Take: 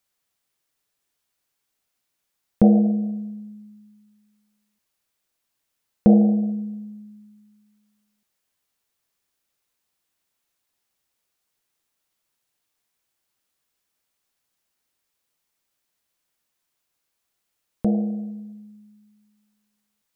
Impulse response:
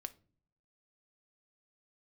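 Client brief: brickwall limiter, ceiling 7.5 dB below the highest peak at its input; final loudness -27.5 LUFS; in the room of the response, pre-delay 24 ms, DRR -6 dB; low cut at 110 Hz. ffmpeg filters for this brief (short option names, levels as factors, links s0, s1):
-filter_complex "[0:a]highpass=110,alimiter=limit=0.266:level=0:latency=1,asplit=2[s0][s1];[1:a]atrim=start_sample=2205,adelay=24[s2];[s1][s2]afir=irnorm=-1:irlink=0,volume=2.99[s3];[s0][s3]amix=inputs=2:normalize=0,volume=0.266"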